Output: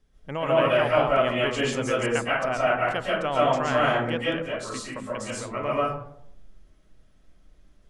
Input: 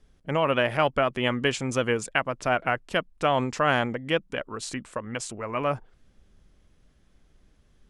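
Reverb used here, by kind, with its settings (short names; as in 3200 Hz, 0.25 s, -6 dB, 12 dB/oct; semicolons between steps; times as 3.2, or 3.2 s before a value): digital reverb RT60 0.71 s, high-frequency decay 0.4×, pre-delay 95 ms, DRR -6.5 dB; gain -6 dB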